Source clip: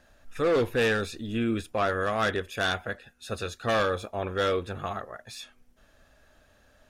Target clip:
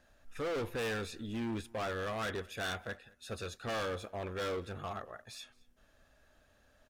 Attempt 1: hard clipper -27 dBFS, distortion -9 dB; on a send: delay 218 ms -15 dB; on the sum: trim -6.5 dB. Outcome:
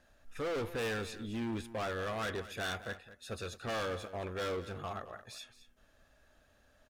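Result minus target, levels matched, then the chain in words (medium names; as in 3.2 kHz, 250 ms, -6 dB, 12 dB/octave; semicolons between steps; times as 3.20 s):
echo-to-direct +10 dB
hard clipper -27 dBFS, distortion -9 dB; on a send: delay 218 ms -25 dB; on the sum: trim -6.5 dB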